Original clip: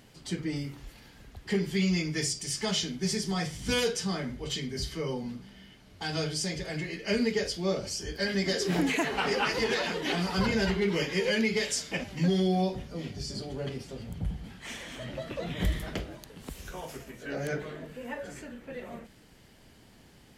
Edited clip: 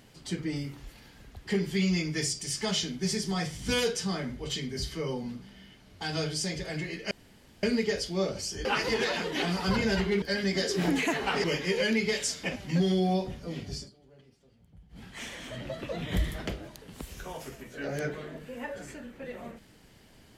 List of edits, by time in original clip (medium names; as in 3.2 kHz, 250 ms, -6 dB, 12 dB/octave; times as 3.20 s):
7.11 s: insert room tone 0.52 s
8.13–9.35 s: move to 10.92 s
13.24–14.51 s: dip -22 dB, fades 0.14 s